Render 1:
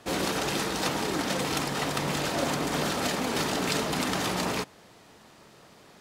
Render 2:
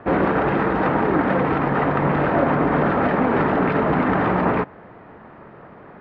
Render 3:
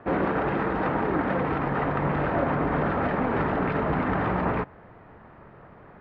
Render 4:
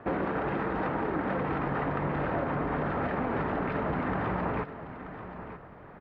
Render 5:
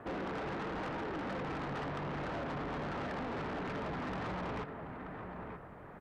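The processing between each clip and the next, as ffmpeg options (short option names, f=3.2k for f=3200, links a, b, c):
-filter_complex "[0:a]asplit=2[a][b];[b]alimiter=limit=-20.5dB:level=0:latency=1:release=94,volume=2dB[c];[a][c]amix=inputs=2:normalize=0,lowpass=f=1.8k:w=0.5412,lowpass=f=1.8k:w=1.3066,volume=5dB"
-af "asubboost=boost=2.5:cutoff=130,volume=-6dB"
-af "acompressor=threshold=-27dB:ratio=6,aecho=1:1:931:0.251"
-af "asoftclip=type=tanh:threshold=-34dB,volume=-2dB" -ar 32000 -c:a sbc -b:a 192k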